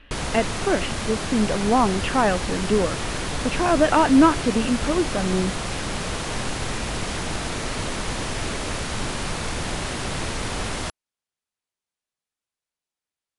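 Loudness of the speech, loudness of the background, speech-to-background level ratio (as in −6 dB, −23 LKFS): −22.0 LKFS, −28.0 LKFS, 6.0 dB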